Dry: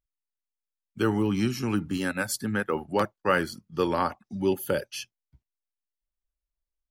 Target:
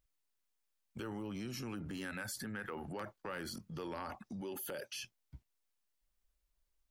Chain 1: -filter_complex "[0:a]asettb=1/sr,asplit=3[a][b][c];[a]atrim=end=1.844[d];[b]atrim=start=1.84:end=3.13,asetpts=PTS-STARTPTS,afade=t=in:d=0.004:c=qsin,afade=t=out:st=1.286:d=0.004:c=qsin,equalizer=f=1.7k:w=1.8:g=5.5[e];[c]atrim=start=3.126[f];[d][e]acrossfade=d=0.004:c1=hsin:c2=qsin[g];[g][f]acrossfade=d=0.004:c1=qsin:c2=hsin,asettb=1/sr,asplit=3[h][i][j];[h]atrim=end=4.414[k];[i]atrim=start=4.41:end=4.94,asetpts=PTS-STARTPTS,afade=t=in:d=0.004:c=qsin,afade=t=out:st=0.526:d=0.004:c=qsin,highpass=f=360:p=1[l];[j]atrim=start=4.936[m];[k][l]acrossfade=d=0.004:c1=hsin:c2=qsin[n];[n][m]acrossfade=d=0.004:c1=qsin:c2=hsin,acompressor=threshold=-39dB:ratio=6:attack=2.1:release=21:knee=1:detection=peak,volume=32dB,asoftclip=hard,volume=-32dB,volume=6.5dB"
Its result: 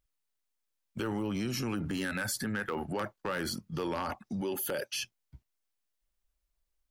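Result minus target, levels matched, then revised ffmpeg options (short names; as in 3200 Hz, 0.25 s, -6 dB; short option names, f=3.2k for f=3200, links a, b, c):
compressor: peak gain reduction -9 dB
-filter_complex "[0:a]asettb=1/sr,asplit=3[a][b][c];[a]atrim=end=1.844[d];[b]atrim=start=1.84:end=3.13,asetpts=PTS-STARTPTS,afade=t=in:d=0.004:c=qsin,afade=t=out:st=1.286:d=0.004:c=qsin,equalizer=f=1.7k:w=1.8:g=5.5[e];[c]atrim=start=3.126[f];[d][e]acrossfade=d=0.004:c1=hsin:c2=qsin[g];[g][f]acrossfade=d=0.004:c1=qsin:c2=hsin,asettb=1/sr,asplit=3[h][i][j];[h]atrim=end=4.414[k];[i]atrim=start=4.41:end=4.94,asetpts=PTS-STARTPTS,afade=t=in:d=0.004:c=qsin,afade=t=out:st=0.526:d=0.004:c=qsin,highpass=f=360:p=1[l];[j]atrim=start=4.936[m];[k][l]acrossfade=d=0.004:c1=hsin:c2=qsin[n];[n][m]acrossfade=d=0.004:c1=qsin:c2=hsin,acompressor=threshold=-50dB:ratio=6:attack=2.1:release=21:knee=1:detection=peak,volume=32dB,asoftclip=hard,volume=-32dB,volume=6.5dB"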